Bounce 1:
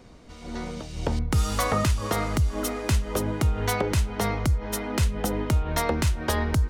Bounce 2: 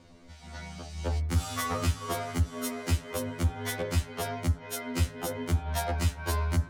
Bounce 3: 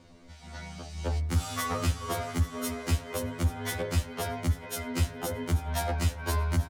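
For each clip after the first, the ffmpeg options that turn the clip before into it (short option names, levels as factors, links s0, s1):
-af "bandreject=f=53.95:t=h:w=4,bandreject=f=107.9:t=h:w=4,bandreject=f=161.85:t=h:w=4,bandreject=f=215.8:t=h:w=4,bandreject=f=269.75:t=h:w=4,bandreject=f=323.7:t=h:w=4,bandreject=f=377.65:t=h:w=4,bandreject=f=431.6:t=h:w=4,bandreject=f=485.55:t=h:w=4,bandreject=f=539.5:t=h:w=4,bandreject=f=593.45:t=h:w=4,bandreject=f=647.4:t=h:w=4,bandreject=f=701.35:t=h:w=4,bandreject=f=755.3:t=h:w=4,bandreject=f=809.25:t=h:w=4,bandreject=f=863.2:t=h:w=4,bandreject=f=917.15:t=h:w=4,bandreject=f=971.1:t=h:w=4,bandreject=f=1025.05:t=h:w=4,bandreject=f=1079:t=h:w=4,bandreject=f=1132.95:t=h:w=4,bandreject=f=1186.9:t=h:w=4,bandreject=f=1240.85:t=h:w=4,bandreject=f=1294.8:t=h:w=4,bandreject=f=1348.75:t=h:w=4,bandreject=f=1402.7:t=h:w=4,bandreject=f=1456.65:t=h:w=4,bandreject=f=1510.6:t=h:w=4,bandreject=f=1564.55:t=h:w=4,bandreject=f=1618.5:t=h:w=4,bandreject=f=1672.45:t=h:w=4,bandreject=f=1726.4:t=h:w=4,bandreject=f=1780.35:t=h:w=4,bandreject=f=1834.3:t=h:w=4,bandreject=f=1888.25:t=h:w=4,asoftclip=type=hard:threshold=0.126,afftfilt=real='re*2*eq(mod(b,4),0)':imag='im*2*eq(mod(b,4),0)':win_size=2048:overlap=0.75,volume=0.841"
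-af "aecho=1:1:832|1664|2496:0.168|0.047|0.0132"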